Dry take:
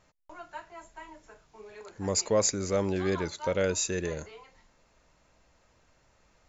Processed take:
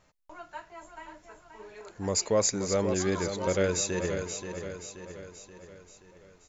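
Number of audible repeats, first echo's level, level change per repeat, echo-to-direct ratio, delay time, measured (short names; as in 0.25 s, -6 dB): 5, -8.0 dB, -6.0 dB, -6.5 dB, 0.529 s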